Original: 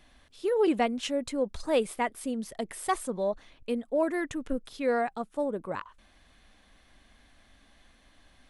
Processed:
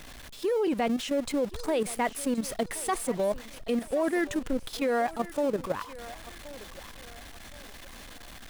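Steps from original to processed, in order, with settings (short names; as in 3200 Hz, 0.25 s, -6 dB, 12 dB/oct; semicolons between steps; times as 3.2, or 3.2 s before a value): zero-crossing step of -37.5 dBFS; level quantiser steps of 10 dB; thinning echo 1.074 s, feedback 42%, high-pass 420 Hz, level -15.5 dB; gain +4.5 dB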